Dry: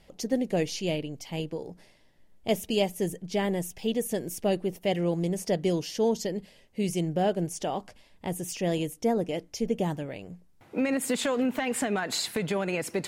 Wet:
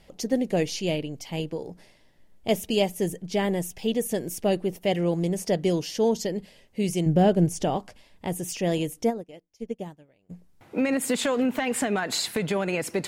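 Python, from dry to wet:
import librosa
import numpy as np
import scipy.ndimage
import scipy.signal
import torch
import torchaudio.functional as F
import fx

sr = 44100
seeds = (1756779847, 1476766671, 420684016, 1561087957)

y = fx.low_shelf(x, sr, hz=270.0, db=11.0, at=(7.06, 7.77))
y = fx.upward_expand(y, sr, threshold_db=-38.0, expansion=2.5, at=(9.09, 10.29), fade=0.02)
y = F.gain(torch.from_numpy(y), 2.5).numpy()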